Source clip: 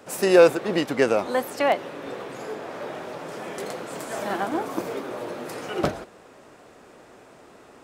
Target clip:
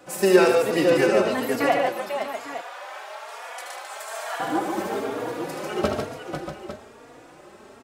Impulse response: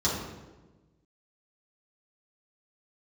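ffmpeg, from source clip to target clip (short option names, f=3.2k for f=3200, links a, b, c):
-filter_complex "[0:a]asettb=1/sr,asplit=3[a][b][c];[a]atrim=end=1.764[d];[b]atrim=start=1.76:end=4.4,asetpts=PTS-STARTPTS,afade=t=in:d=0.004:c=qsin,afade=t=out:st=2.636:d=0.004:c=qsin,highpass=f=720:w=0.5412,highpass=f=720:w=1.3066[e];[c]atrim=start=4.396[f];[d][e]acrossfade=d=0.004:c1=hsin:c2=qsin[g];[g][f]acrossfade=d=0.004:c1=qsin:c2=hsin,aecho=1:1:76|146|266|495|637|853:0.447|0.562|0.126|0.398|0.266|0.237,asplit=2[h][i];[i]adelay=3.6,afreqshift=1.1[j];[h][j]amix=inputs=2:normalize=1,volume=2.5dB"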